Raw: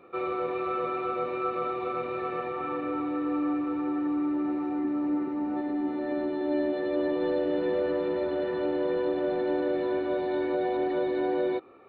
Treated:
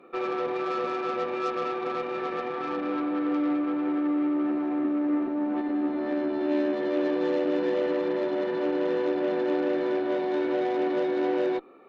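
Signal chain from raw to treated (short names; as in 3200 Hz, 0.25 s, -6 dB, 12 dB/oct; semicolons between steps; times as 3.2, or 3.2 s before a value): added harmonics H 8 -22 dB, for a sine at -17.5 dBFS; resonant low shelf 140 Hz -13 dB, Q 1.5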